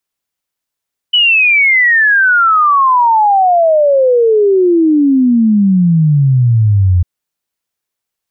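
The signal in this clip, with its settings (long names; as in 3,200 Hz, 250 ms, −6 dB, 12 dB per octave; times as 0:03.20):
exponential sine sweep 3,000 Hz → 86 Hz 5.90 s −6 dBFS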